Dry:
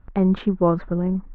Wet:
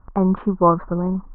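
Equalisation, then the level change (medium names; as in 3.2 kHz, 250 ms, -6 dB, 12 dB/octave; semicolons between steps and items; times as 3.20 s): resonant low-pass 1.1 kHz, resonance Q 3.5; 0.0 dB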